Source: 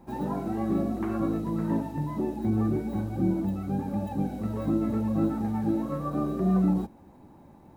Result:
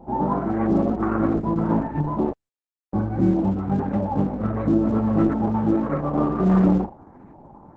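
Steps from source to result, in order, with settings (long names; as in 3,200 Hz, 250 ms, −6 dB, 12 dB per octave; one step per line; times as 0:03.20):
high-shelf EQ 2,200 Hz −8 dB
0:04.04–0:05.85: notch filter 760 Hz, Q 13
auto-filter low-pass saw up 1.5 Hz 720–2,100 Hz
delay with a band-pass on its return 79 ms, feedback 42%, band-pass 1,000 Hz, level −13 dB
0:02.33–0:02.93: silence
level +6.5 dB
Opus 10 kbit/s 48,000 Hz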